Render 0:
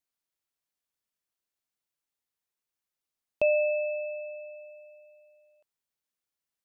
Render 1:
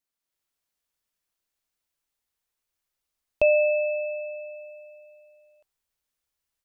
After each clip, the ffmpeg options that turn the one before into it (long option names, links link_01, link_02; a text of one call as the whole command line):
ffmpeg -i in.wav -af "bandreject=frequency=384.8:width_type=h:width=4,bandreject=frequency=769.6:width_type=h:width=4,bandreject=frequency=1154.4:width_type=h:width=4,bandreject=frequency=1539.2:width_type=h:width=4,bandreject=frequency=1924:width_type=h:width=4,bandreject=frequency=2308.8:width_type=h:width=4,asubboost=boost=4.5:cutoff=78,dynaudnorm=framelen=200:gausssize=3:maxgain=5dB" out.wav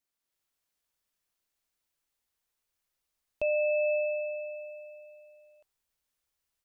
ffmpeg -i in.wav -af "alimiter=limit=-22dB:level=0:latency=1" out.wav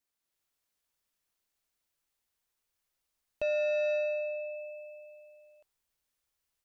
ffmpeg -i in.wav -af "asoftclip=type=tanh:threshold=-24dB" out.wav